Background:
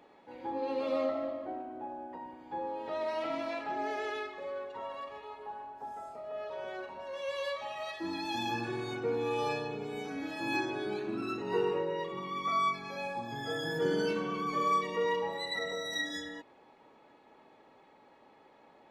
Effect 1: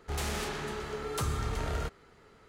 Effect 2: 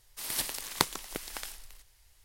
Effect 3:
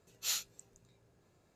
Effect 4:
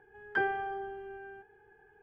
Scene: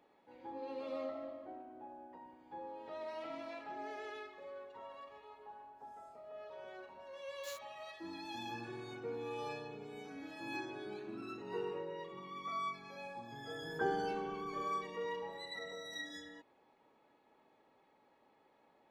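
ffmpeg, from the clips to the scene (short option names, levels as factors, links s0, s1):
-filter_complex "[0:a]volume=0.316[s0];[3:a]aeval=exprs='val(0)*gte(abs(val(0)),0.0168)':c=same[s1];[4:a]lowpass=f=1300:w=0.5412,lowpass=f=1300:w=1.3066[s2];[s1]atrim=end=1.55,asetpts=PTS-STARTPTS,volume=0.15,afade=t=in:d=0.004:c=hsin,afade=t=out:st=1.546:d=0.004:c=hsin,adelay=7190[s3];[s2]atrim=end=2.02,asetpts=PTS-STARTPTS,volume=0.631,afade=t=in:d=0.004:c=hsin,afade=t=out:st=2.016:d=0.004:c=hsin,adelay=13440[s4];[s0][s3][s4]amix=inputs=3:normalize=0"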